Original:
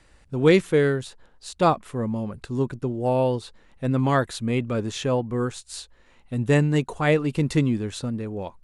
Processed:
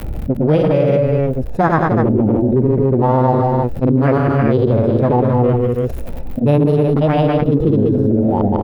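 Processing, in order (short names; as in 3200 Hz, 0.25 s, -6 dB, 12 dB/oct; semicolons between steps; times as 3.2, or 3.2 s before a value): Wiener smoothing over 41 samples; low shelf 430 Hz +8.5 dB; on a send: tapped delay 0.122/0.141/0.171/0.312 s -19.5/-11/-8/-10.5 dB; on the sum: grains, pitch spread up and down by 0 st; formant shift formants +6 st; crackle 110/s -48 dBFS; vocal rider within 3 dB 0.5 s; bell 6100 Hz -15 dB 1.9 oct; fast leveller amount 70%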